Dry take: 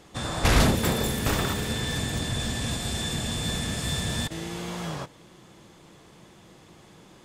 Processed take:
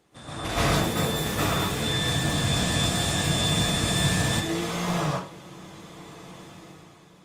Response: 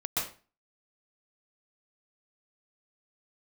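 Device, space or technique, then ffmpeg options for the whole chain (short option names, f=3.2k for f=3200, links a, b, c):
far-field microphone of a smart speaker: -filter_complex "[1:a]atrim=start_sample=2205[a];[0:a][a]afir=irnorm=-1:irlink=0,highpass=f=110:p=1,dynaudnorm=f=100:g=13:m=11dB,volume=-9dB" -ar 48000 -c:a libopus -b:a 32k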